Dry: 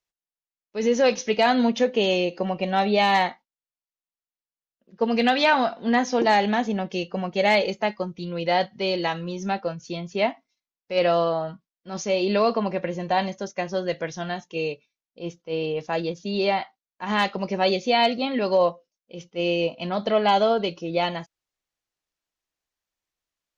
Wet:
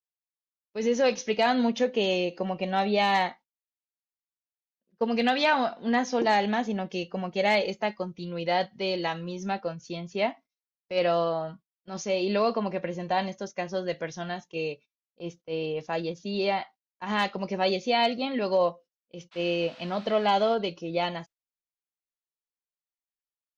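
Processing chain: gate -44 dBFS, range -14 dB; 19.31–20.54 s: band noise 670–4400 Hz -48 dBFS; trim -4 dB

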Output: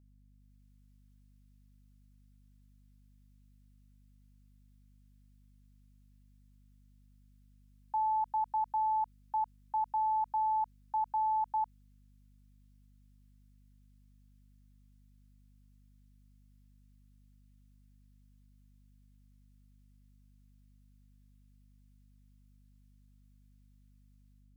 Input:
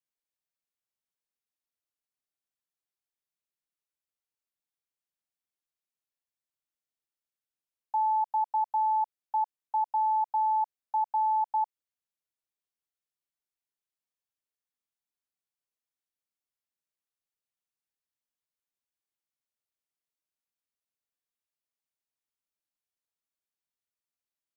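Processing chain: peaking EQ 700 Hz -9.5 dB 1.1 oct; peak limiter -36 dBFS, peak gain reduction 6.5 dB; level rider gain up to 8 dB; hum 50 Hz, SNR 22 dB; trim +1 dB

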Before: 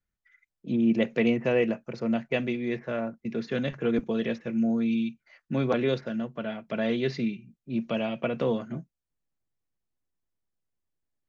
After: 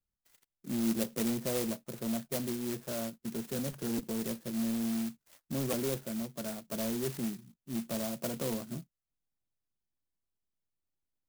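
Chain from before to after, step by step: band-stop 470 Hz, Q 12; in parallel at -8 dB: wavefolder -28.5 dBFS; on the sum: sampling jitter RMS 0.15 ms; trim -7.5 dB

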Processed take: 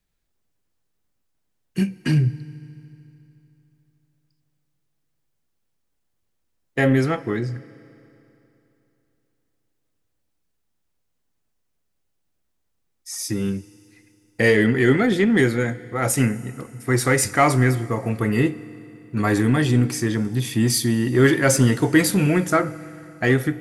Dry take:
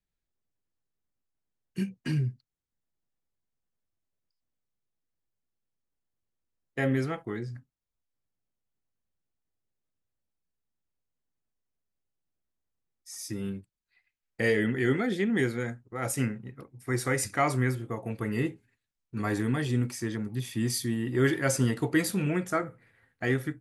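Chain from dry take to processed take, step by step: in parallel at -8.5 dB: saturation -28.5 dBFS, distortion -8 dB; on the sum: FDN reverb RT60 3.1 s, high-frequency decay 0.9×, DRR 17 dB; trim +8 dB

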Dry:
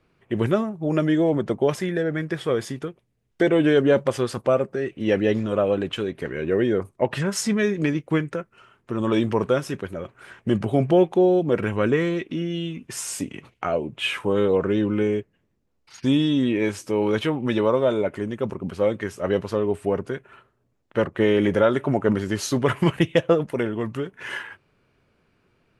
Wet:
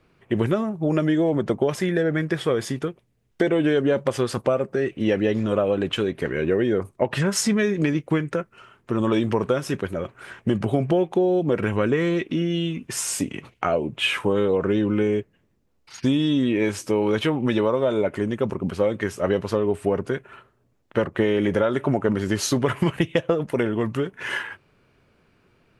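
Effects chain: compression, threshold -21 dBFS, peak gain reduction 8.5 dB; trim +4 dB

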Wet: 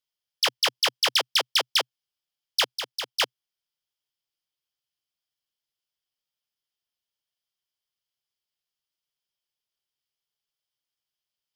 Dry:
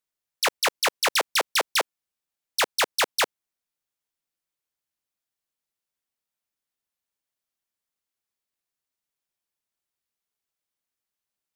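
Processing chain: 2.78–3.20 s: level held to a coarse grid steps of 15 dB; graphic EQ with 31 bands 125 Hz +7 dB, 250 Hz -9 dB, 3.15 kHz +12 dB, 5 kHz +10 dB, 8 kHz -3 dB; trim -4.5 dB

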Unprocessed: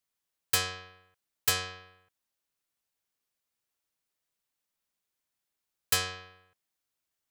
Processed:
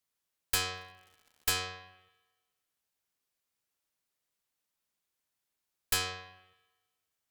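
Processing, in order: spring tank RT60 1.3 s, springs 39/51 ms, chirp 80 ms, DRR 17 dB; 0.73–1.59 s: crackle 160 per s -49 dBFS; one-sided clip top -30 dBFS

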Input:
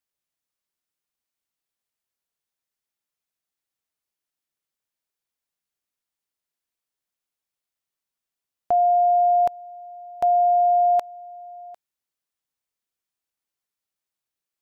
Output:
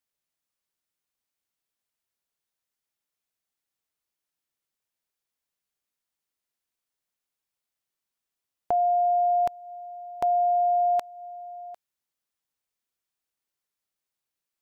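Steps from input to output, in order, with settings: dynamic bell 610 Hz, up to -5 dB, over -33 dBFS, Q 0.98

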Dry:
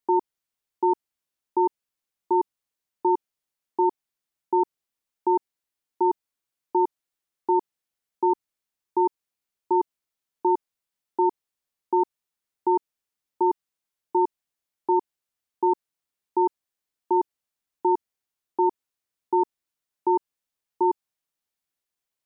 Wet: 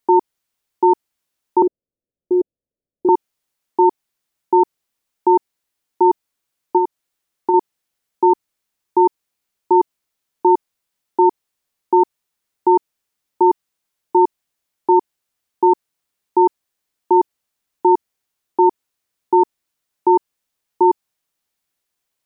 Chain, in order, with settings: 1.62–3.09 s: steep low-pass 610 Hz 48 dB/octave; 6.77–7.54 s: compression, threshold -22 dBFS, peak gain reduction 5.5 dB; trim +8.5 dB

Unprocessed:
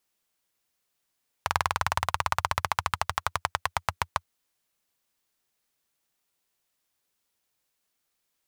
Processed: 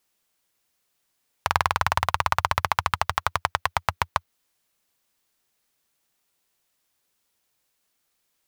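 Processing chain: dynamic bell 8.2 kHz, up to -5 dB, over -54 dBFS, Q 0.98; trim +4.5 dB

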